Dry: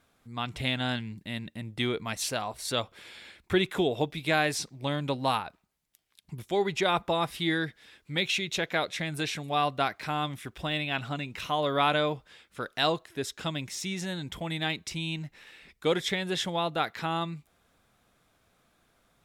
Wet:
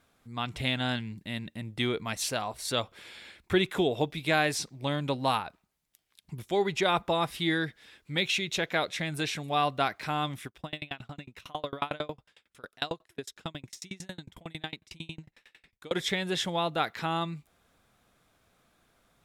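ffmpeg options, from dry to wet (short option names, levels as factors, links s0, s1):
-filter_complex "[0:a]asplit=3[s0][s1][s2];[s0]afade=t=out:st=10.46:d=0.02[s3];[s1]aeval=exprs='val(0)*pow(10,-33*if(lt(mod(11*n/s,1),2*abs(11)/1000),1-mod(11*n/s,1)/(2*abs(11)/1000),(mod(11*n/s,1)-2*abs(11)/1000)/(1-2*abs(11)/1000))/20)':c=same,afade=t=in:st=10.46:d=0.02,afade=t=out:st=15.94:d=0.02[s4];[s2]afade=t=in:st=15.94:d=0.02[s5];[s3][s4][s5]amix=inputs=3:normalize=0"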